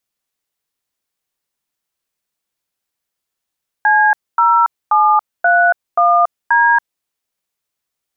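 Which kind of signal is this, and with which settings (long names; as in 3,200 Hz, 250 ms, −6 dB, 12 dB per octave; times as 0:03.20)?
touch tones "C0731D", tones 281 ms, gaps 250 ms, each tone −11 dBFS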